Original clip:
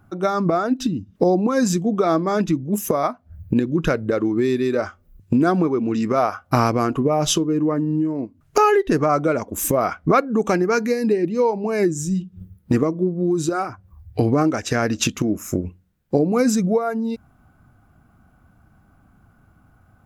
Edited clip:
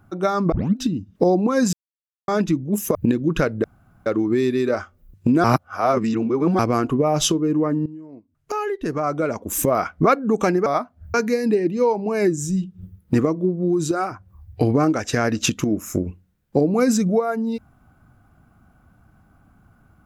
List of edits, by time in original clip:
0.52 tape start 0.25 s
1.73–2.28 mute
2.95–3.43 move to 10.72
4.12 insert room tone 0.42 s
5.5–6.65 reverse
7.92–9.59 fade in quadratic, from -16.5 dB

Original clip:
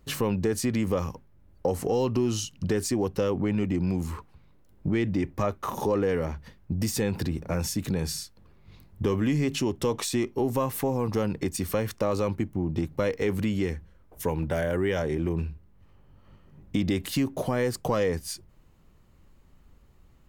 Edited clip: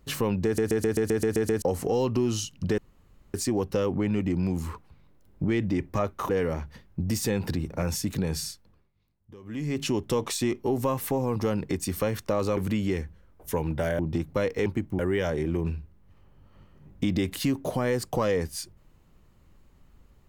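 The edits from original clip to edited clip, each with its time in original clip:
0.45 stutter in place 0.13 s, 9 plays
2.78 insert room tone 0.56 s
5.73–6.01 cut
8.21–9.59 dip -22 dB, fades 0.44 s
12.29–12.62 swap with 13.29–14.71

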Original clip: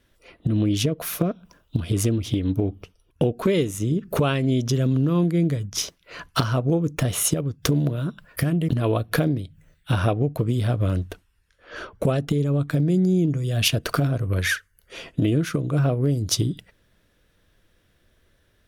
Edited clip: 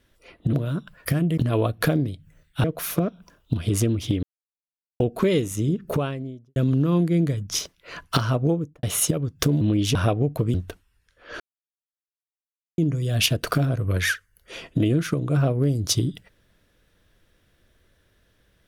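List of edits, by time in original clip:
0.53–0.87 swap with 7.84–9.95
2.46–3.23 mute
3.89–4.79 studio fade out
6.68–7.06 studio fade out
10.54–10.96 cut
11.82–13.2 mute

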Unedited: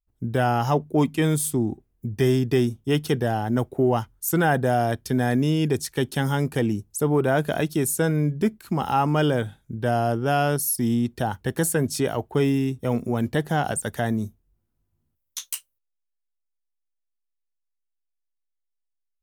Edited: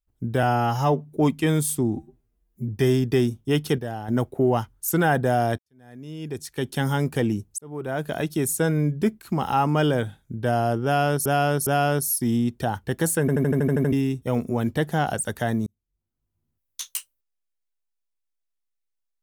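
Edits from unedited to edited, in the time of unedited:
0.43–0.92 stretch 1.5×
1.72–2.08 stretch 2×
3.18–3.48 gain -7.5 dB
4.98–6.23 fade in quadratic
6.98–8.14 fade in equal-power
10.24–10.65 loop, 3 plays
11.78 stutter in place 0.08 s, 9 plays
14.24–15.41 fade in linear

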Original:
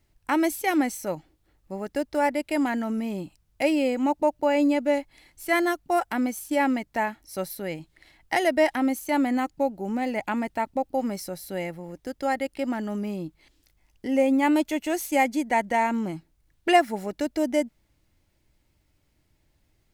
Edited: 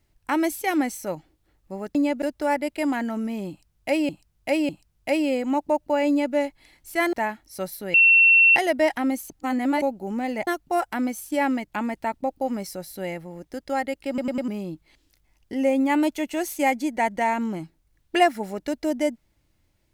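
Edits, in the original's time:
3.22–3.82 loop, 3 plays
4.61–4.88 copy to 1.95
5.66–6.91 move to 10.25
7.72–8.34 bleep 2710 Hz -11.5 dBFS
9.08–9.6 reverse
12.61 stutter in place 0.10 s, 4 plays

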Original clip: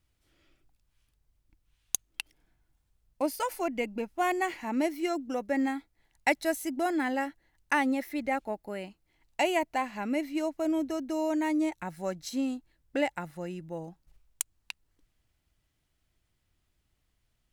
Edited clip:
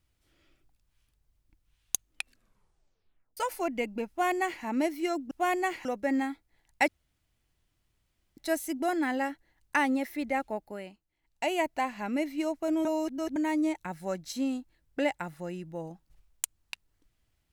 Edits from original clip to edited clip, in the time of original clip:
2.09 tape stop 1.28 s
4.09–4.63 copy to 5.31
6.34 insert room tone 1.49 s
8.56–9.63 dip -11 dB, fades 0.47 s
10.82–11.33 reverse

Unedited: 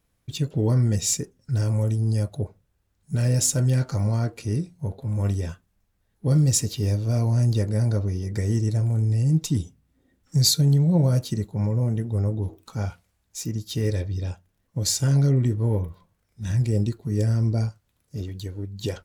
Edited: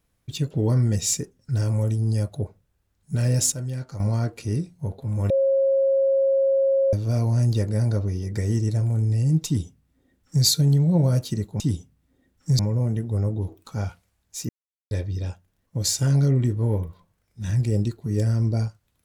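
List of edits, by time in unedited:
3.52–4 gain -9 dB
5.3–6.93 bleep 542 Hz -16.5 dBFS
9.46–10.45 copy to 11.6
13.5–13.92 mute

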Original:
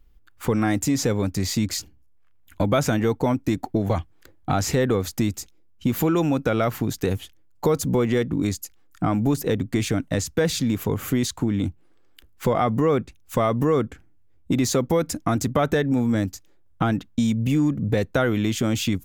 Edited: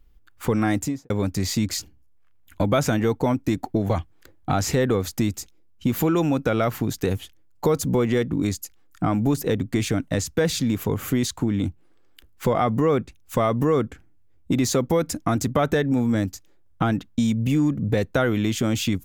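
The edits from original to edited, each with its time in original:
0.75–1.1 studio fade out

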